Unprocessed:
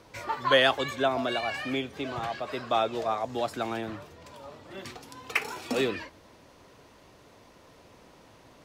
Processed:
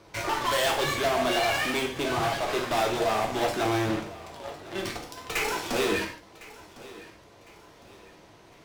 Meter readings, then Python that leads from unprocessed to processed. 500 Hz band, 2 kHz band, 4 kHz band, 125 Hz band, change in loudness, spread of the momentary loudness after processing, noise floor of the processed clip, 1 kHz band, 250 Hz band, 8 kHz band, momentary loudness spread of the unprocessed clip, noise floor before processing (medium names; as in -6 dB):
+1.5 dB, +2.0 dB, +1.5 dB, +5.5 dB, +1.5 dB, 20 LU, -54 dBFS, +2.5 dB, +3.0 dB, +11.5 dB, 20 LU, -56 dBFS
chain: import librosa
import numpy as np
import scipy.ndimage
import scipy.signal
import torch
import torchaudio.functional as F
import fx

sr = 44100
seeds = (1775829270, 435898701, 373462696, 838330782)

p1 = fx.peak_eq(x, sr, hz=12000.0, db=-3.0, octaves=0.77)
p2 = fx.fuzz(p1, sr, gain_db=32.0, gate_db=-39.0)
p3 = p1 + (p2 * librosa.db_to_amplitude(-3.0))
p4 = fx.tube_stage(p3, sr, drive_db=26.0, bias=0.35)
p5 = fx.echo_feedback(p4, sr, ms=1056, feedback_pct=38, wet_db=-19.0)
y = fx.rev_gated(p5, sr, seeds[0], gate_ms=180, shape='falling', drr_db=0.5)